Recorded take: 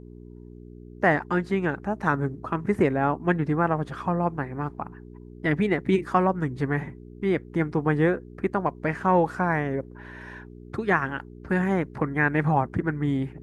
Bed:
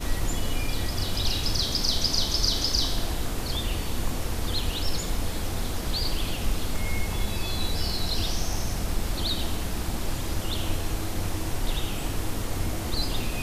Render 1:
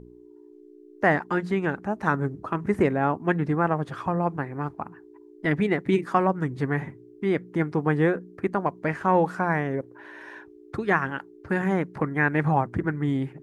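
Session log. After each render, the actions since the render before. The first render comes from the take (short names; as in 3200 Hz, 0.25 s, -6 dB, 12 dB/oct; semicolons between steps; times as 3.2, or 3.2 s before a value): de-hum 60 Hz, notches 4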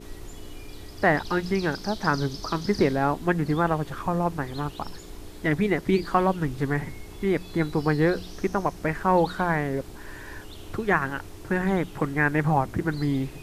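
add bed -14 dB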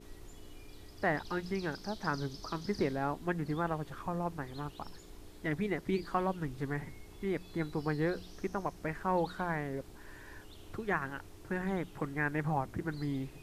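gain -10.5 dB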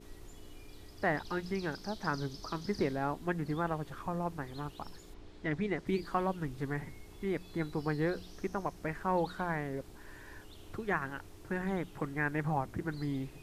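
5.13–5.85 LPF 3800 Hz -> 8100 Hz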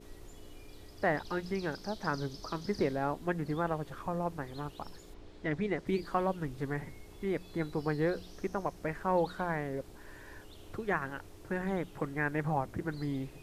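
bell 540 Hz +4 dB 0.66 oct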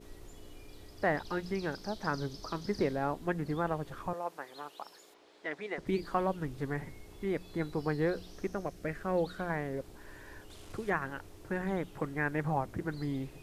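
4.13–5.78 HPF 520 Hz; 8.51–9.5 bell 930 Hz -11 dB 0.47 oct; 10.5–10.9 delta modulation 64 kbps, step -47 dBFS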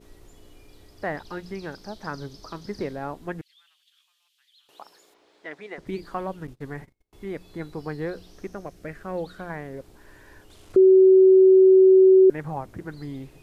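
3.41–4.69 ladder high-pass 2900 Hz, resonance 65%; 6.47–7.13 gate -43 dBFS, range -34 dB; 10.76–12.3 bleep 378 Hz -10 dBFS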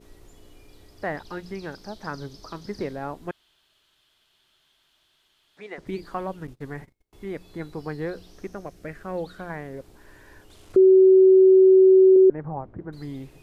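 3.31–5.57 room tone; 12.16–12.93 LPF 1100 Hz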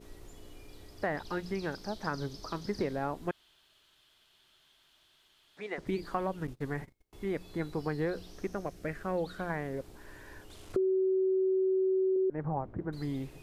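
limiter -17.5 dBFS, peak gain reduction 7.5 dB; compressor, threshold -27 dBFS, peak gain reduction 7.5 dB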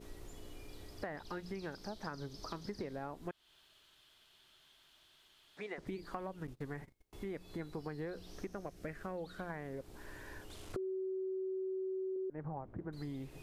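compressor 3:1, threshold -42 dBFS, peak gain reduction 12 dB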